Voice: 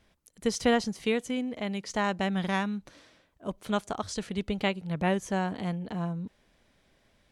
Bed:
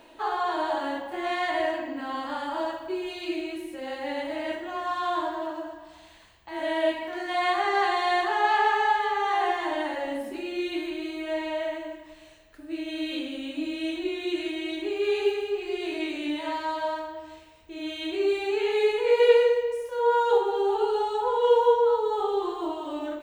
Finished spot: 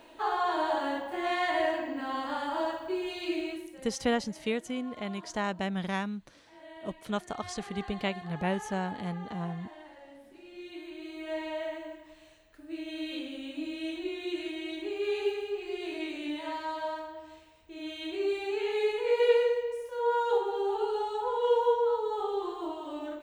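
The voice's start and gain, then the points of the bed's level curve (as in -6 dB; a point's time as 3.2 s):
3.40 s, -3.5 dB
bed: 3.49 s -1.5 dB
4.07 s -20.5 dB
10.21 s -20.5 dB
11.32 s -5.5 dB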